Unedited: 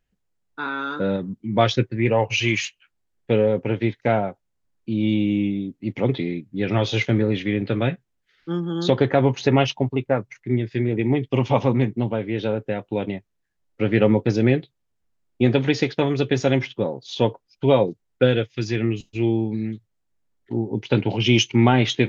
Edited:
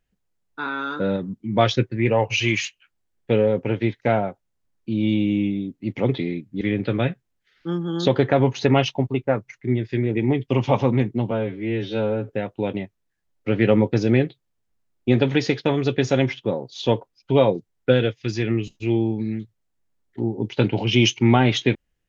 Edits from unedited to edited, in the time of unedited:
6.61–7.43 s: delete
12.13–12.62 s: stretch 2×

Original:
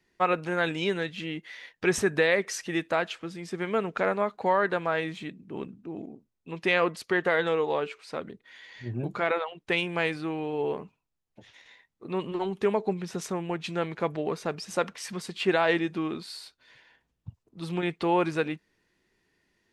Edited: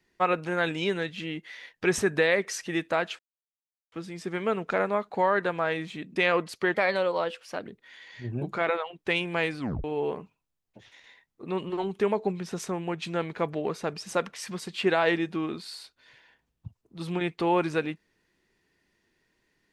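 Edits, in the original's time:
3.19 s: insert silence 0.73 s
5.43–6.64 s: delete
7.22–8.28 s: speed 115%
10.21 s: tape stop 0.25 s

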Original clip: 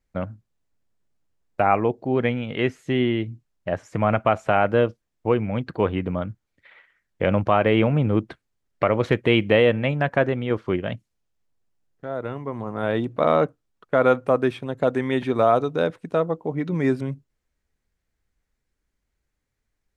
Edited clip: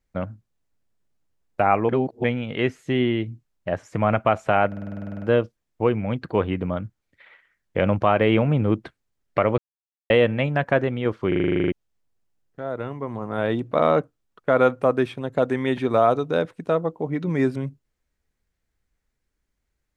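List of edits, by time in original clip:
1.89–2.24 s: reverse
4.67 s: stutter 0.05 s, 12 plays
9.03–9.55 s: mute
10.73 s: stutter in place 0.04 s, 11 plays

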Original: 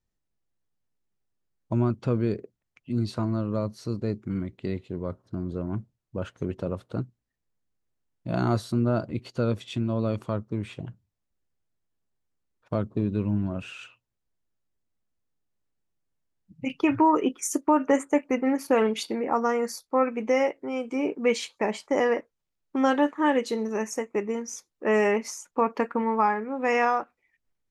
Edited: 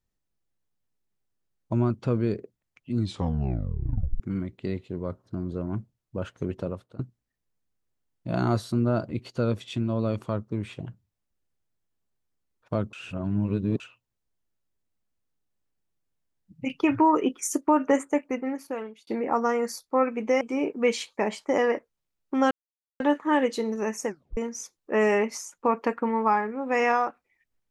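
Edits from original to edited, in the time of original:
2.97 s: tape stop 1.23 s
6.62–6.99 s: fade out, to -22 dB
12.93–13.80 s: reverse
17.91–19.07 s: fade out
20.41–20.83 s: delete
22.93 s: insert silence 0.49 s
24.00 s: tape stop 0.30 s

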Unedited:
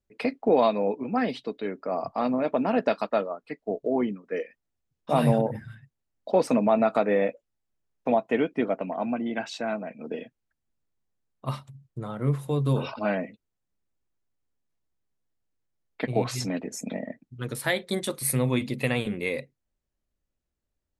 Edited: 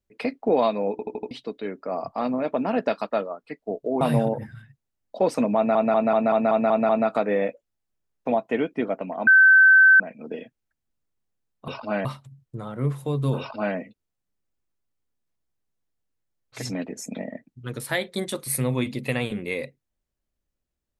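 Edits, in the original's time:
0.91 s: stutter in place 0.08 s, 5 plays
4.01–5.14 s: delete
6.69 s: stutter 0.19 s, 8 plays
9.07–9.80 s: bleep 1.54 kHz -10 dBFS
12.82–13.19 s: copy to 11.48 s
16.03–16.35 s: delete, crossfade 0.16 s

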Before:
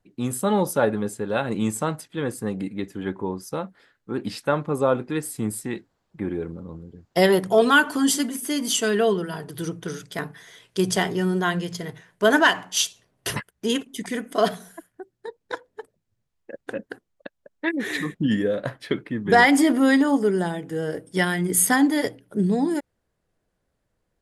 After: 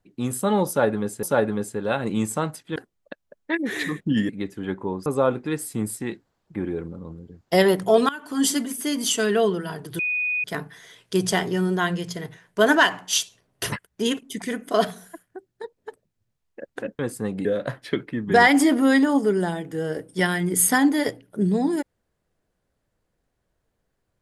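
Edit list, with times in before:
0.68–1.23 s: loop, 2 plays
2.21–2.67 s: swap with 16.90–18.43 s
3.44–4.70 s: delete
7.73–8.08 s: fade in quadratic, from -20.5 dB
9.63–10.08 s: bleep 2.48 kHz -21.5 dBFS
15.42–15.69 s: delete

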